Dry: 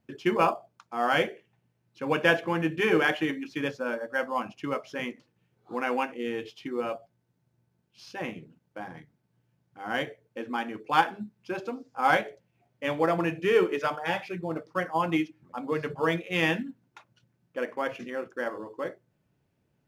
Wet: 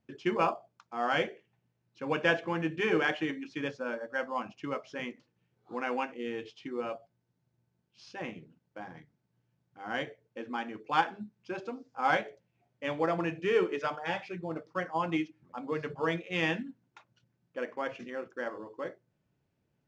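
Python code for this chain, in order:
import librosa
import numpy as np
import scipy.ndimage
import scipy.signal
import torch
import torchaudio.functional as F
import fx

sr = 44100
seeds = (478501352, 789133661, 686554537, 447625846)

y = scipy.signal.sosfilt(scipy.signal.butter(4, 7400.0, 'lowpass', fs=sr, output='sos'), x)
y = y * 10.0 ** (-4.5 / 20.0)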